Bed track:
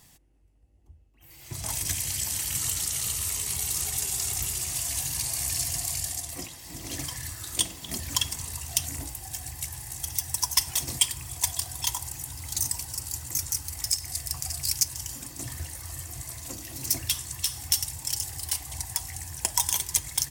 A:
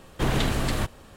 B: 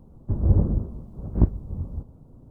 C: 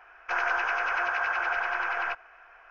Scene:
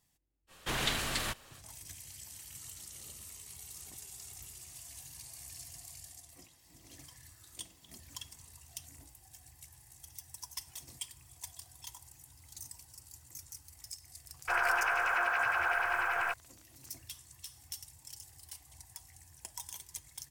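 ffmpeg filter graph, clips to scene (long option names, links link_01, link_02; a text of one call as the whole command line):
ffmpeg -i bed.wav -i cue0.wav -i cue1.wav -i cue2.wav -filter_complex "[0:a]volume=-19.5dB[link_01];[1:a]tiltshelf=frequency=880:gain=-8[link_02];[2:a]aderivative[link_03];[3:a]aeval=exprs='val(0)*gte(abs(val(0)),0.00596)':channel_layout=same[link_04];[link_02]atrim=end=1.16,asetpts=PTS-STARTPTS,volume=-8dB,afade=type=in:duration=0.05,afade=type=out:start_time=1.11:duration=0.05,adelay=470[link_05];[link_03]atrim=end=2.5,asetpts=PTS-STARTPTS,volume=-10dB,afade=type=in:duration=0.004:curve=hsin,afade=type=out:start_time=2.496:duration=0.004:curve=hsin,adelay=2500[link_06];[link_04]atrim=end=2.7,asetpts=PTS-STARTPTS,volume=-2.5dB,afade=type=in:duration=0.004:curve=hsin,afade=type=out:start_time=2.696:duration=0.004:curve=hsin,adelay=14190[link_07];[link_01][link_05][link_06][link_07]amix=inputs=4:normalize=0" out.wav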